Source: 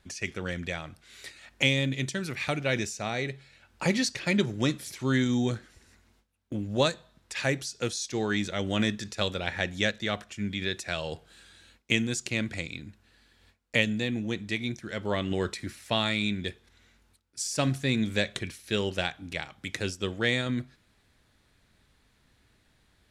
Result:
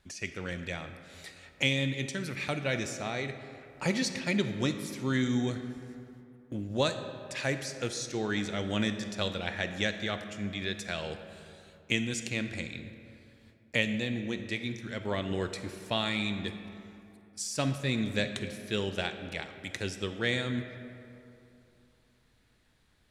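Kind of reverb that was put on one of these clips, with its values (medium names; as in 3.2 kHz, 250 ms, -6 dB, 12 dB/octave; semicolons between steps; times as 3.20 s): algorithmic reverb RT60 2.8 s, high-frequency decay 0.5×, pre-delay 5 ms, DRR 8.5 dB; trim -3.5 dB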